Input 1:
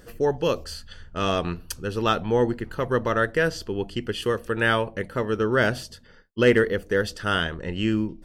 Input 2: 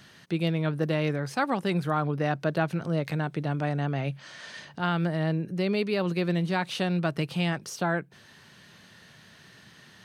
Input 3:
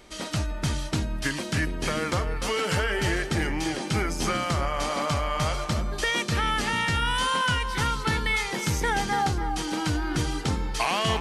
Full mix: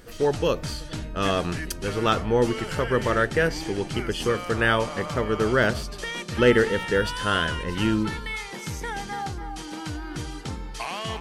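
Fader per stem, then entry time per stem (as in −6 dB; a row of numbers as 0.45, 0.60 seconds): 0.0, −19.5, −6.5 decibels; 0.00, 0.00, 0.00 seconds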